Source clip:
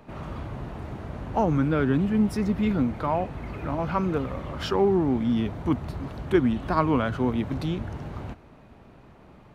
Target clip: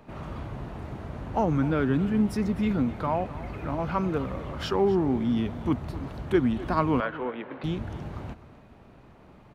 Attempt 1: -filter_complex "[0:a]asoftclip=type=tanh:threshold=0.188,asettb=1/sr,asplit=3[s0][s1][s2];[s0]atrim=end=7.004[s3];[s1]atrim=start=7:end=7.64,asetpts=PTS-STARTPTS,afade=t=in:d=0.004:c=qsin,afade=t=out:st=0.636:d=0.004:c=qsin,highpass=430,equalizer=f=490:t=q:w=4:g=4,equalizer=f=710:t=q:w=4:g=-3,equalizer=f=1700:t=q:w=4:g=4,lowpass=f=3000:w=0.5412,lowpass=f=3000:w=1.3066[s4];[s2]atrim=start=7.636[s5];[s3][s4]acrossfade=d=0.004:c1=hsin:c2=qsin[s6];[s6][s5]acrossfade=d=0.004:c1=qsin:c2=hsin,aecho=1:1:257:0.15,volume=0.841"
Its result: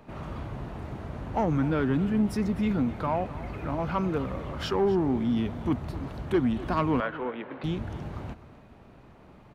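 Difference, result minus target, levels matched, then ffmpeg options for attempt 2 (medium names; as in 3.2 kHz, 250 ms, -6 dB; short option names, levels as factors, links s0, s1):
saturation: distortion +16 dB
-filter_complex "[0:a]asoftclip=type=tanh:threshold=0.596,asettb=1/sr,asplit=3[s0][s1][s2];[s0]atrim=end=7.004[s3];[s1]atrim=start=7:end=7.64,asetpts=PTS-STARTPTS,afade=t=in:d=0.004:c=qsin,afade=t=out:st=0.636:d=0.004:c=qsin,highpass=430,equalizer=f=490:t=q:w=4:g=4,equalizer=f=710:t=q:w=4:g=-3,equalizer=f=1700:t=q:w=4:g=4,lowpass=f=3000:w=0.5412,lowpass=f=3000:w=1.3066[s4];[s2]atrim=start=7.636[s5];[s3][s4]acrossfade=d=0.004:c1=hsin:c2=qsin[s6];[s6][s5]acrossfade=d=0.004:c1=qsin:c2=hsin,aecho=1:1:257:0.15,volume=0.841"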